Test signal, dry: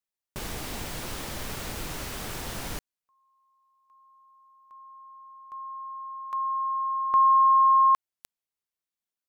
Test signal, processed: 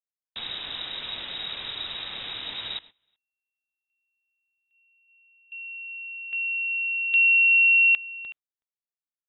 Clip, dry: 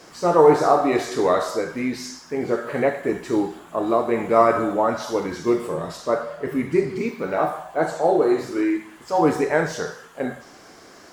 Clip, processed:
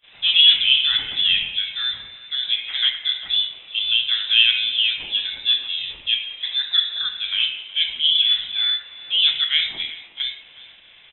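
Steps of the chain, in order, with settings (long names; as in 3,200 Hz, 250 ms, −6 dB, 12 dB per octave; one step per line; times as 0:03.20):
single-tap delay 372 ms −19 dB
noise gate −46 dBFS, range −22 dB
voice inversion scrambler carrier 3,800 Hz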